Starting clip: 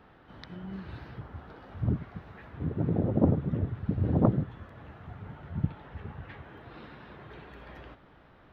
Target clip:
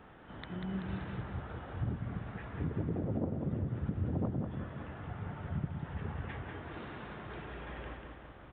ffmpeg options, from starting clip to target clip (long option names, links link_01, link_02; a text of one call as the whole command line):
ffmpeg -i in.wav -filter_complex "[0:a]acompressor=threshold=-33dB:ratio=12,asplit=2[link_01][link_02];[link_02]aecho=0:1:191|382|573|764|955|1146:0.562|0.276|0.135|0.0662|0.0324|0.0159[link_03];[link_01][link_03]amix=inputs=2:normalize=0,aresample=8000,aresample=44100,volume=1.5dB" out.wav